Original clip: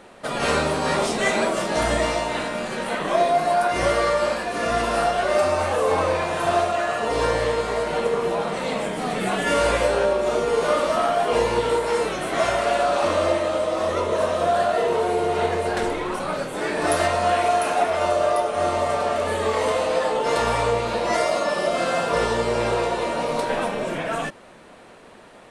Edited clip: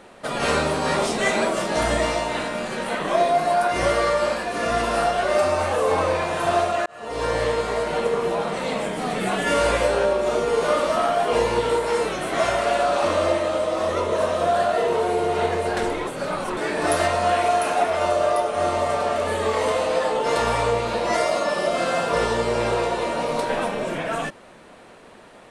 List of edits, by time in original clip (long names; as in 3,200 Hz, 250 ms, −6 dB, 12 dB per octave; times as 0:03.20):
0:06.86–0:07.41: fade in
0:16.07–0:16.57: reverse